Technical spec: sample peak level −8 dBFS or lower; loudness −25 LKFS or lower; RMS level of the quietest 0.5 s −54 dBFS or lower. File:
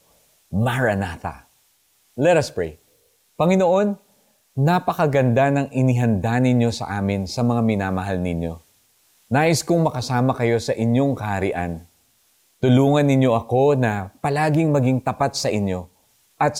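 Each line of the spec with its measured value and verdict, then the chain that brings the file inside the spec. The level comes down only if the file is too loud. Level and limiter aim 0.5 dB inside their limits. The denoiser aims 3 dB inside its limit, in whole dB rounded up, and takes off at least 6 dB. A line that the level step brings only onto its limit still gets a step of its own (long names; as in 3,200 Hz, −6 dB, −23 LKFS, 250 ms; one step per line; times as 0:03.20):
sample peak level −6.5 dBFS: out of spec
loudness −20.0 LKFS: out of spec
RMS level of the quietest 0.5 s −62 dBFS: in spec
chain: level −5.5 dB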